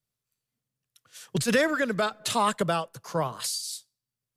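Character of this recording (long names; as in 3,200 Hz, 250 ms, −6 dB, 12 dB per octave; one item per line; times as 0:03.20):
tremolo triangle 0.93 Hz, depth 45%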